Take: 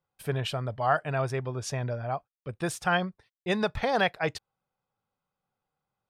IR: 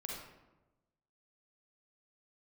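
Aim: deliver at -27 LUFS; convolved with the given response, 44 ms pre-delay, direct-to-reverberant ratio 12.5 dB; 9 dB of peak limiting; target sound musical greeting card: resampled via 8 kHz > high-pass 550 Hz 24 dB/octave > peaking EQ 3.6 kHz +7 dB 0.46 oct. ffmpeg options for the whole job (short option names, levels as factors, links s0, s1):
-filter_complex "[0:a]alimiter=limit=0.0944:level=0:latency=1,asplit=2[s0][s1];[1:a]atrim=start_sample=2205,adelay=44[s2];[s1][s2]afir=irnorm=-1:irlink=0,volume=0.251[s3];[s0][s3]amix=inputs=2:normalize=0,aresample=8000,aresample=44100,highpass=f=550:w=0.5412,highpass=f=550:w=1.3066,equalizer=f=3600:t=o:w=0.46:g=7,volume=2.37"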